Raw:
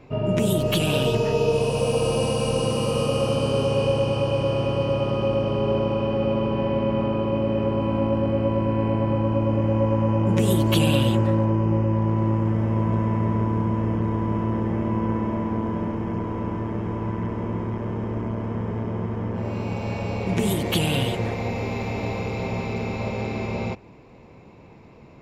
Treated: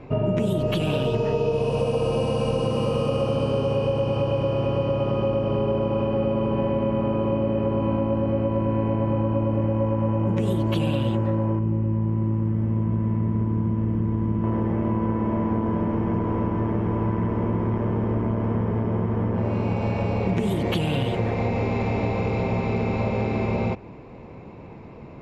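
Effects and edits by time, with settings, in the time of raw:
11.59–14.44 EQ curve 260 Hz 0 dB, 610 Hz -10 dB, 4800 Hz -4 dB
whole clip: compressor, threshold -26 dBFS; LPF 1900 Hz 6 dB/oct; gain +6.5 dB

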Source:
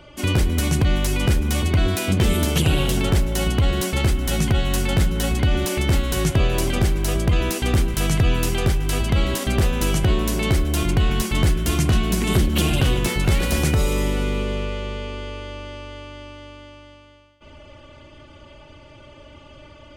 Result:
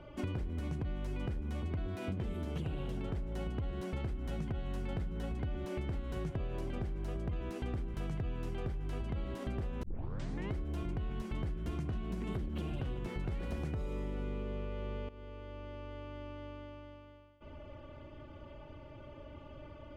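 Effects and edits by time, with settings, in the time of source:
9.83 tape start 0.70 s
15.09–16.47 fade in, from -15 dB
whole clip: LPF 2700 Hz 6 dB/oct; high shelf 2000 Hz -10 dB; compressor, threshold -31 dBFS; gain -4.5 dB

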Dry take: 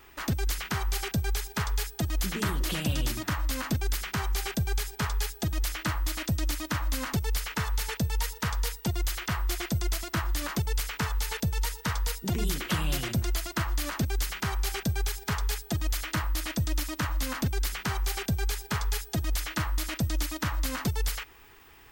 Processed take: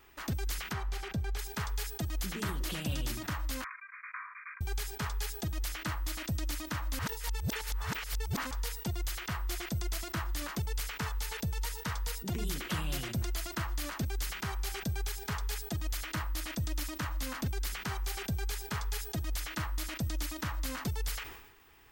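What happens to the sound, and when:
0.73–1.39 LPF 2700 Hz 6 dB/oct
3.64–4.61 brick-wall FIR band-pass 980–2500 Hz
6.99–8.51 reverse
whole clip: sustainer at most 61 dB/s; gain -6.5 dB

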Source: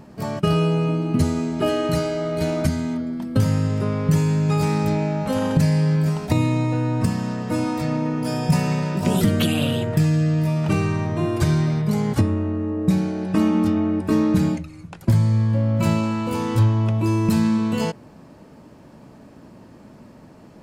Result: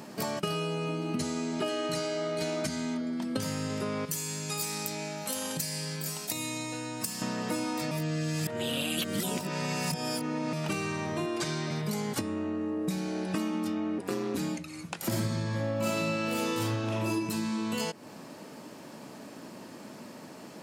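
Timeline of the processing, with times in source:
1.16–3.42 LPF 9200 Hz
4.05–7.22 pre-emphasis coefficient 0.8
7.91–10.53 reverse
11.26–11.71 BPF 160–7500 Hz
13.98–14.38 ring modulator 94 Hz
14.97–17.1 reverb throw, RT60 1.2 s, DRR -10 dB
whole clip: HPF 210 Hz 12 dB/oct; high shelf 2300 Hz +10 dB; compressor 5:1, threshold -31 dBFS; gain +1 dB

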